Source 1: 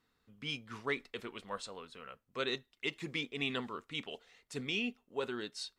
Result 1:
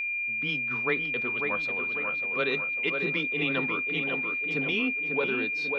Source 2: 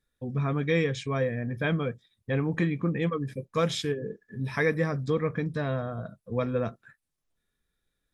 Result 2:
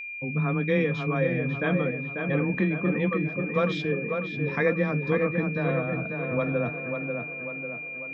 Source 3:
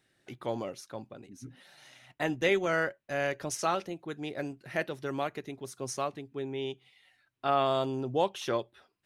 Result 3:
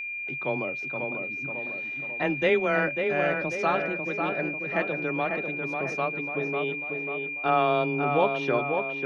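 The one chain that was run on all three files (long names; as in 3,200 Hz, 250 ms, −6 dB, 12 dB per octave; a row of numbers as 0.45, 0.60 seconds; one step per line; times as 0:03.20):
high-frequency loss of the air 250 metres
tape delay 544 ms, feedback 58%, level −4 dB, low-pass 2,100 Hz
frequency shifter +15 Hz
steady tone 2,400 Hz −36 dBFS
loudness normalisation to −27 LKFS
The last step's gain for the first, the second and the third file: +8.0, +2.0, +4.5 decibels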